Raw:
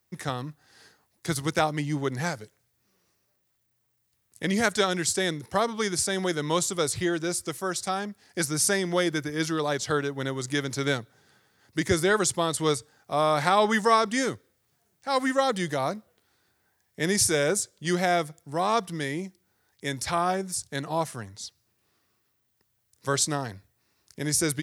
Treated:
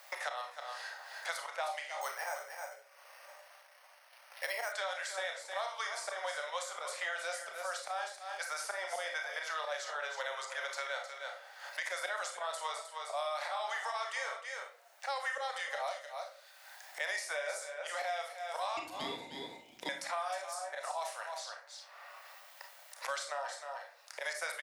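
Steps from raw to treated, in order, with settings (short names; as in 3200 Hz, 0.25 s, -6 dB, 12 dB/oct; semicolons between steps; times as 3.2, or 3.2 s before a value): Chebyshev high-pass 550 Hz, order 6; high shelf 4400 Hz -11.5 dB; auto swell 0.111 s; limiter -23.5 dBFS, peak gain reduction 10.5 dB; flange 0.4 Hz, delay 4.5 ms, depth 6.7 ms, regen +84%; 18.77–19.89 ring modulator 1500 Hz; echo 0.309 s -11.5 dB; on a send at -2.5 dB: reverb RT60 0.35 s, pre-delay 27 ms; 2.01–4.72 on the sum: careless resampling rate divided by 6×, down filtered, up hold; three-band squash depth 100%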